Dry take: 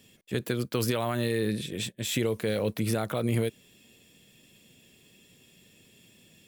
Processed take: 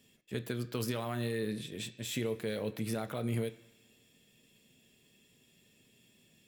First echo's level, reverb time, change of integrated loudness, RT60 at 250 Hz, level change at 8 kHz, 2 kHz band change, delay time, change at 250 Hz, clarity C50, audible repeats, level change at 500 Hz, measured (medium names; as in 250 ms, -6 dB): no echo, 1.3 s, -7.0 dB, 1.0 s, -8.0 dB, -7.0 dB, no echo, -6.5 dB, 15.5 dB, no echo, -7.5 dB